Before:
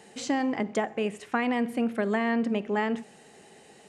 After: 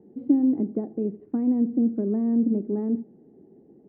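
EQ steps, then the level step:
low-pass with resonance 310 Hz, resonance Q 3.4
high-frequency loss of the air 280 metres
0.0 dB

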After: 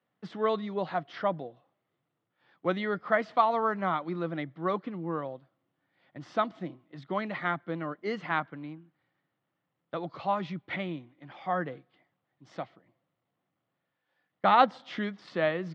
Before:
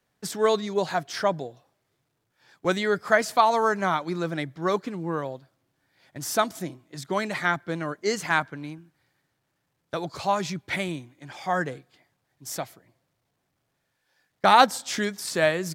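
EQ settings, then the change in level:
loudspeaker in its box 190–2,800 Hz, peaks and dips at 260 Hz −3 dB, 410 Hz −8 dB, 630 Hz −4 dB, 910 Hz −6 dB, 1,600 Hz −9 dB, 2,400 Hz −8 dB
0.0 dB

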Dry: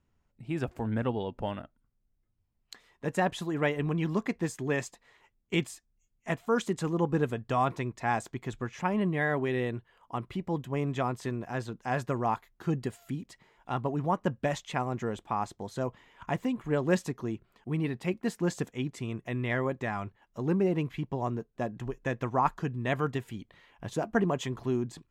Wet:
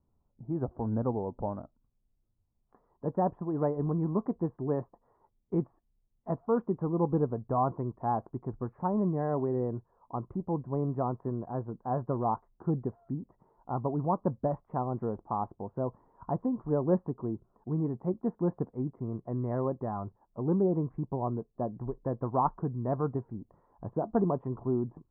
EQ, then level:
Butterworth low-pass 1,100 Hz 36 dB per octave
0.0 dB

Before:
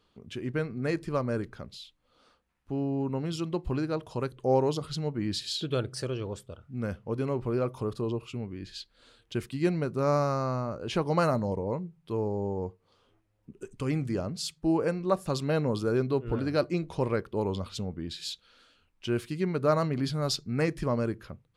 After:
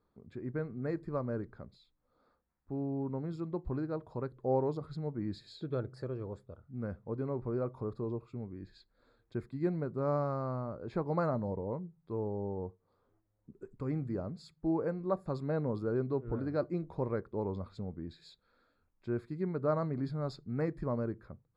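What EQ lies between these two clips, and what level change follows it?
moving average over 15 samples
−5.5 dB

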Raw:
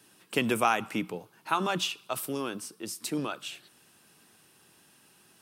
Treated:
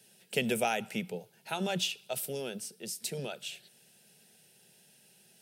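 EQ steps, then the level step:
phaser with its sweep stopped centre 300 Hz, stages 6
0.0 dB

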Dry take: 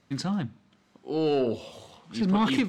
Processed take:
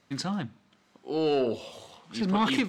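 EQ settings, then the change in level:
low-shelf EQ 280 Hz −7 dB
+1.5 dB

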